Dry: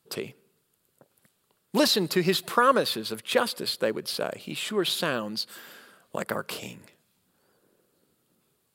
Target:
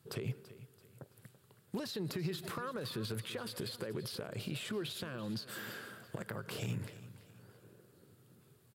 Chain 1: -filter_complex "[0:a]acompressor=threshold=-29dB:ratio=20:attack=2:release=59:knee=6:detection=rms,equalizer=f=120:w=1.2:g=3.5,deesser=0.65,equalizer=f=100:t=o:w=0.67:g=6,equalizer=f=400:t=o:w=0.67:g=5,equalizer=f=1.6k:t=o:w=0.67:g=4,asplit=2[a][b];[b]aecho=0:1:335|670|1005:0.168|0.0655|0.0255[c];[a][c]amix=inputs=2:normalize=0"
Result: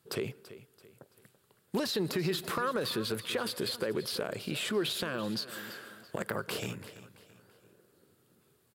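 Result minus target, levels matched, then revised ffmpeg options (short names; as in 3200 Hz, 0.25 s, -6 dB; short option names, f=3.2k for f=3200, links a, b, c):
compressor: peak gain reduction -10 dB; 125 Hz band -7.5 dB
-filter_complex "[0:a]acompressor=threshold=-39.5dB:ratio=20:attack=2:release=59:knee=6:detection=rms,equalizer=f=120:w=1.2:g=13.5,deesser=0.65,equalizer=f=100:t=o:w=0.67:g=6,equalizer=f=400:t=o:w=0.67:g=5,equalizer=f=1.6k:t=o:w=0.67:g=4,asplit=2[a][b];[b]aecho=0:1:335|670|1005:0.168|0.0655|0.0255[c];[a][c]amix=inputs=2:normalize=0"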